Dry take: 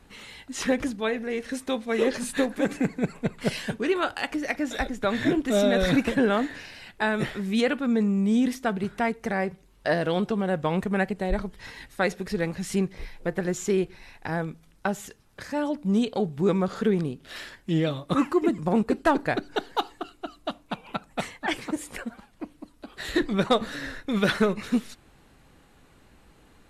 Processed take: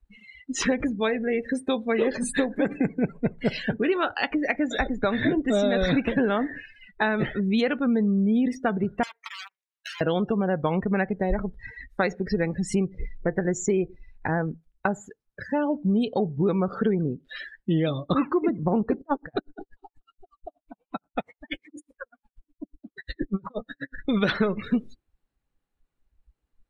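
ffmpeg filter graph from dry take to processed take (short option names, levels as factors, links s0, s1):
-filter_complex "[0:a]asettb=1/sr,asplit=3[s0][s1][s2];[s0]atrim=end=9.034[s3];[s1]atrim=start=9.03:end=10.01,asetpts=PTS-STARTPTS,afade=t=in:d=0.004:c=qsin,afade=t=out:st=0.976:d=0.004:c=qsin,aeval=exprs='(mod(13.3*val(0)+1,2)-1)/13.3':c=same,highpass=1400,acompressor=threshold=0.0282:ratio=8:attack=3.2:release=140:knee=1:detection=peak[s4];[s2]atrim=start=10.006[s5];[s3][s4]acrossfade=d=0.004:c1=hsin:c2=qsin[s6];[s6][s5]acrossfade=d=0.004:c1=qsin:c2=hsin,asettb=1/sr,asplit=3[s7][s8][s9];[s7]atrim=end=19.014[s10];[s8]atrim=start=19.01:end=23.98,asetpts=PTS-STARTPTS,afade=t=in:d=0.004:c=qsin,afade=t=out:st=4.966:d=0.004:c=qsin,bandreject=f=350:w=11,acompressor=mode=upward:threshold=0.0158:ratio=2.5:attack=3.2:release=140:knee=2.83:detection=peak,aeval=exprs='val(0)*pow(10,-37*(0.5-0.5*cos(2*PI*8.3*n/s))/20)':c=same[s11];[s9]atrim=start=23.976[s12];[s10][s11]acrossfade=d=0.004:c1=hsin:c2=qsin[s13];[s13][s12]acrossfade=d=0.004:c1=qsin:c2=hsin,afftdn=nr=35:nf=-36,acompressor=threshold=0.0398:ratio=3,volume=2.11"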